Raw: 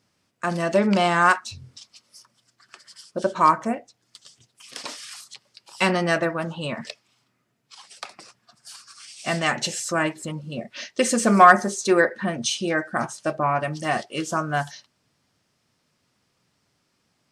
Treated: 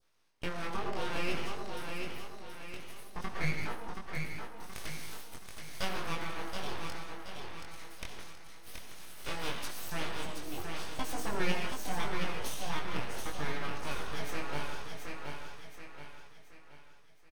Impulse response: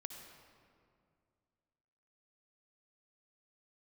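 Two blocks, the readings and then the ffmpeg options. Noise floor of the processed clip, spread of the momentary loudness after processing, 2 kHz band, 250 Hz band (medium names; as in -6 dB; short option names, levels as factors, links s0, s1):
-51 dBFS, 14 LU, -14.0 dB, -16.5 dB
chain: -filter_complex "[0:a]equalizer=f=1200:t=o:w=2:g=5[s0];[1:a]atrim=start_sample=2205,afade=t=out:st=0.27:d=0.01,atrim=end_sample=12348[s1];[s0][s1]afir=irnorm=-1:irlink=0,aeval=exprs='abs(val(0))':c=same,acompressor=threshold=0.0141:ratio=2,flanger=delay=19:depth=4.3:speed=0.81,aecho=1:1:726|1452|2178|2904|3630:0.562|0.231|0.0945|0.0388|0.0159,adynamicequalizer=threshold=0.00224:dfrequency=2100:dqfactor=1.8:tfrequency=2100:tqfactor=1.8:attack=5:release=100:ratio=0.375:range=2:mode=cutabove:tftype=bell,bandreject=f=7300:w=7.2,volume=1.26"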